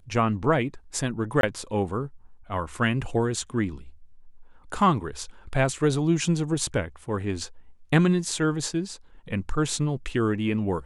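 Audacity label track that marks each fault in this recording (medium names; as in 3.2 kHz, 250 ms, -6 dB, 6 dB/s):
1.410000	1.430000	dropout 22 ms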